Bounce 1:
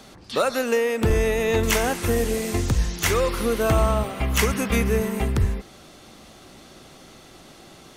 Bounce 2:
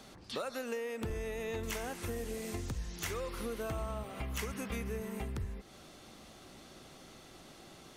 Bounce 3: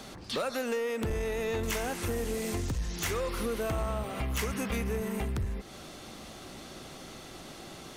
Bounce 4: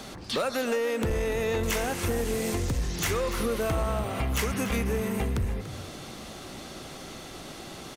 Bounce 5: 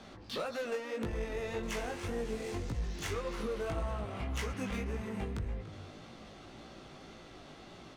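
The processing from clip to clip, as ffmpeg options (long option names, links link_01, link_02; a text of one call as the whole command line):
ffmpeg -i in.wav -af "acompressor=threshold=-31dB:ratio=3,volume=-7.5dB" out.wav
ffmpeg -i in.wav -af "asoftclip=type=tanh:threshold=-33.5dB,volume=8.5dB" out.wav
ffmpeg -i in.wav -filter_complex "[0:a]asplit=4[link_01][link_02][link_03][link_04];[link_02]adelay=289,afreqshift=41,volume=-13dB[link_05];[link_03]adelay=578,afreqshift=82,volume=-22.6dB[link_06];[link_04]adelay=867,afreqshift=123,volume=-32.3dB[link_07];[link_01][link_05][link_06][link_07]amix=inputs=4:normalize=0,volume=4dB" out.wav
ffmpeg -i in.wav -af "adynamicsmooth=sensitivity=7.5:basefreq=4200,flanger=delay=17:depth=3.4:speed=1.8,volume=-6dB" out.wav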